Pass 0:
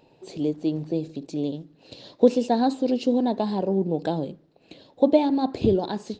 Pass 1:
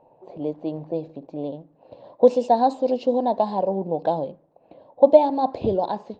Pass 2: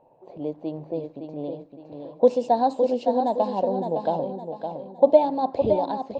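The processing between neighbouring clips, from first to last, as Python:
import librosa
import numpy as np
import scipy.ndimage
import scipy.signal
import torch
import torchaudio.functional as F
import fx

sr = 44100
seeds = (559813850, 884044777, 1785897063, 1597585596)

y1 = fx.band_shelf(x, sr, hz=740.0, db=11.5, octaves=1.3)
y1 = fx.env_lowpass(y1, sr, base_hz=1300.0, full_db=-10.5)
y1 = y1 * librosa.db_to_amplitude(-4.5)
y2 = fx.echo_feedback(y1, sr, ms=562, feedback_pct=37, wet_db=-7)
y2 = y2 * librosa.db_to_amplitude(-2.5)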